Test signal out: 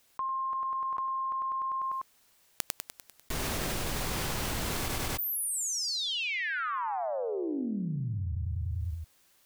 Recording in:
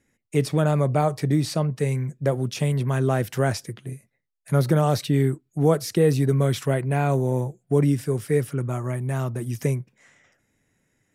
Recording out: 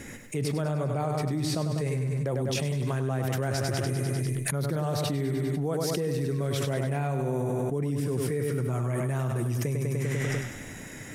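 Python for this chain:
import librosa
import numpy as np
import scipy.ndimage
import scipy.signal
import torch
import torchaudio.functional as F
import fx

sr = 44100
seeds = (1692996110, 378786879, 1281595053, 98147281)

y = fx.echo_feedback(x, sr, ms=99, feedback_pct=56, wet_db=-7)
y = fx.env_flatten(y, sr, amount_pct=100)
y = y * 10.0 ** (-13.0 / 20.0)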